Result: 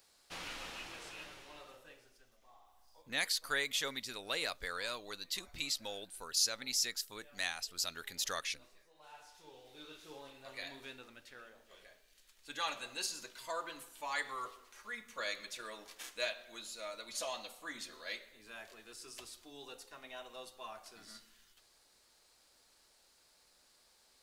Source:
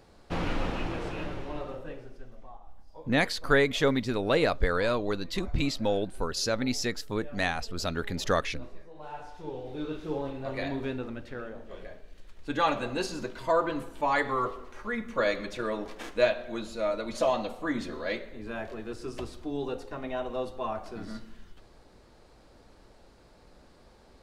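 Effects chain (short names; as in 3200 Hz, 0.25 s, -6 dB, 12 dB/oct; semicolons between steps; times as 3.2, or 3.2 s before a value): pre-emphasis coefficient 0.97; 2.36–3.02 flutter echo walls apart 11.3 m, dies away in 1.2 s; gain +3.5 dB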